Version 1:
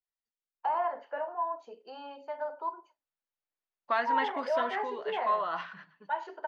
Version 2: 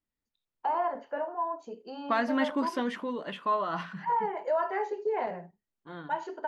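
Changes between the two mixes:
second voice: entry −1.80 s
master: remove three-way crossover with the lows and the highs turned down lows −16 dB, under 470 Hz, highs −18 dB, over 5,300 Hz

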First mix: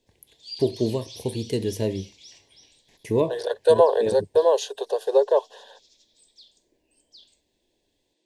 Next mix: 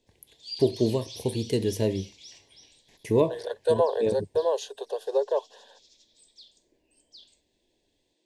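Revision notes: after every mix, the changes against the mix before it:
second voice −6.5 dB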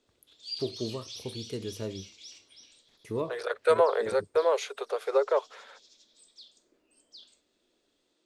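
first voice −10.5 dB
second voice: remove Butterworth band-reject 2,200 Hz, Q 1.9
master: remove Butterworth band-reject 1,300 Hz, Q 2

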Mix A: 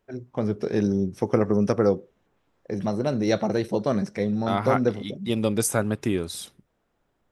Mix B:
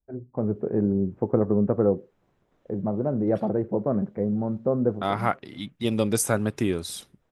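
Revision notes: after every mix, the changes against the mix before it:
first voice: add Bessel low-pass filter 840 Hz, order 4
second voice: entry +0.55 s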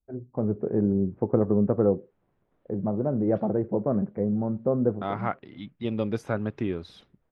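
second voice −3.5 dB
master: add high-frequency loss of the air 290 metres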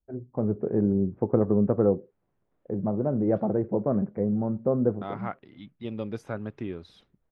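second voice −5.5 dB

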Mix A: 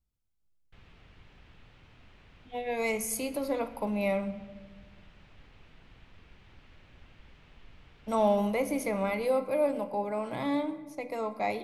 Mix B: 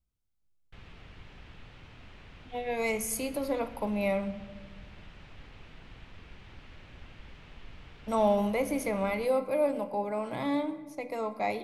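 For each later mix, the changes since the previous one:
background +6.0 dB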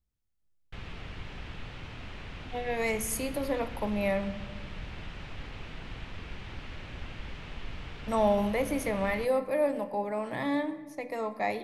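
speech: remove Butterworth band-reject 1,800 Hz, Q 6.3
background +8.5 dB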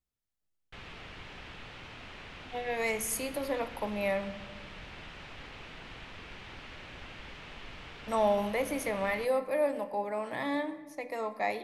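master: add low-shelf EQ 220 Hz −11 dB

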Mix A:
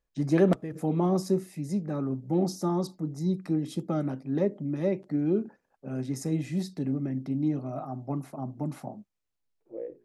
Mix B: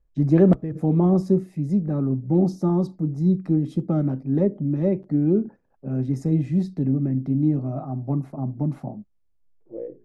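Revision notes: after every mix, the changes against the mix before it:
master: add spectral tilt −3.5 dB per octave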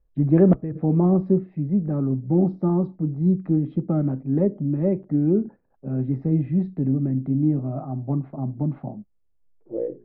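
second voice +6.5 dB
master: add Bessel low-pass filter 1,900 Hz, order 8

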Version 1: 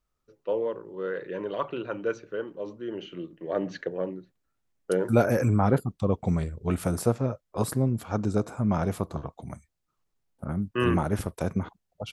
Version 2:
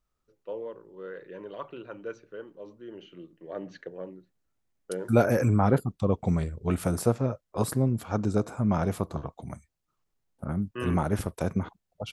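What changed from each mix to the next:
first voice −8.5 dB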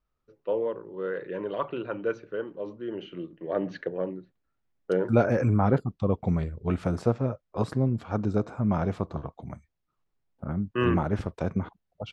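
first voice +9.0 dB
master: add high-frequency loss of the air 150 metres

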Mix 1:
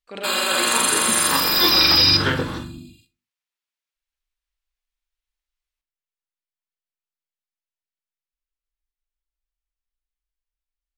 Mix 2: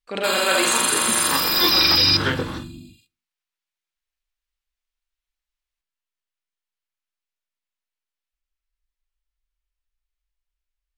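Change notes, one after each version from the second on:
speech +6.5 dB
background: send −9.5 dB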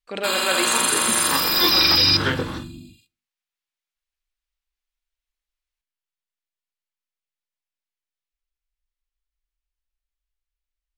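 speech: send −7.5 dB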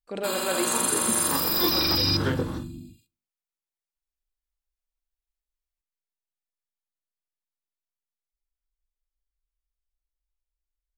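master: add parametric band 2,600 Hz −11.5 dB 2.7 octaves

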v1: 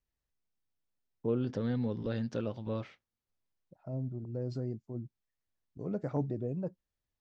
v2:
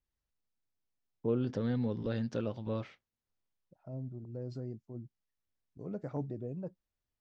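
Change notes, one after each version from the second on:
second voice −4.5 dB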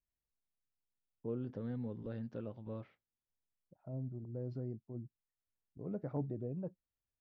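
first voice −7.5 dB
master: add head-to-tape spacing loss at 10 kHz 29 dB

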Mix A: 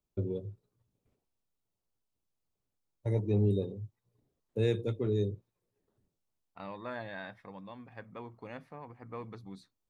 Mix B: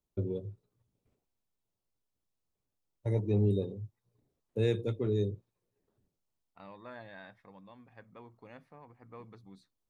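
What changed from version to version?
second voice −7.0 dB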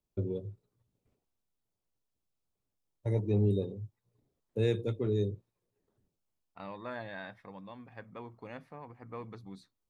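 second voice +6.5 dB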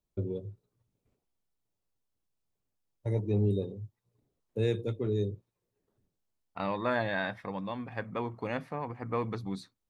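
second voice +11.0 dB

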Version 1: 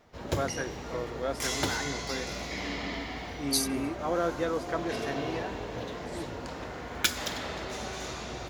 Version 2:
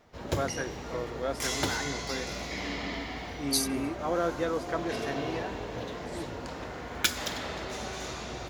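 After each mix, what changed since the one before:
nothing changed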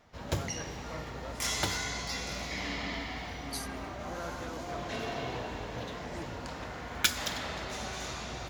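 first voice −11.5 dB
second voice −12.0 dB
master: add parametric band 390 Hz −5.5 dB 1.1 octaves

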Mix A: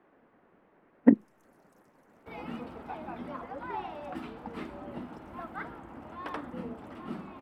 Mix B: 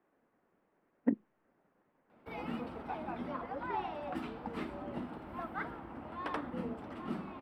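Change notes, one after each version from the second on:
speech −11.5 dB
first sound: muted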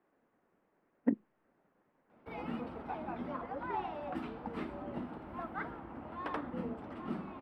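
background: add high-shelf EQ 3,600 Hz −7.5 dB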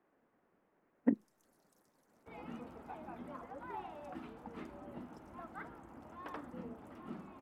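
first sound: unmuted
second sound −7.5 dB

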